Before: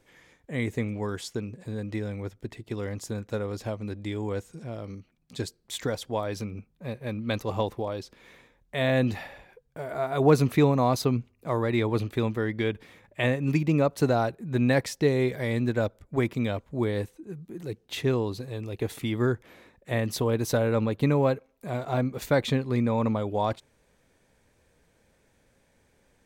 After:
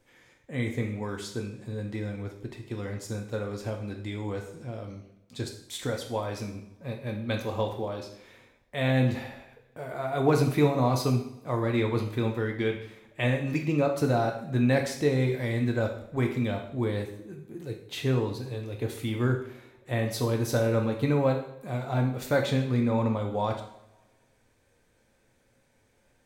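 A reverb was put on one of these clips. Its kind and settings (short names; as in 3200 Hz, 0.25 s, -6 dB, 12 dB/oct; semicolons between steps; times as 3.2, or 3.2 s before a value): two-slope reverb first 0.61 s, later 1.7 s, from -21 dB, DRR 1.5 dB; gain -3.5 dB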